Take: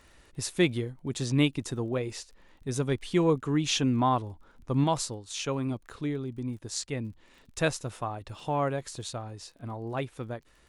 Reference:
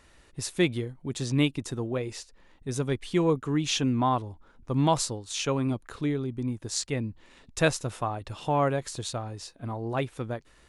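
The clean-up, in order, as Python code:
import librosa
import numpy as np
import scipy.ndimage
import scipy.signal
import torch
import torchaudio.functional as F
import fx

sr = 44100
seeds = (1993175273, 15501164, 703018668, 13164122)

y = fx.fix_declick_ar(x, sr, threshold=6.5)
y = fx.fix_level(y, sr, at_s=4.84, step_db=3.5)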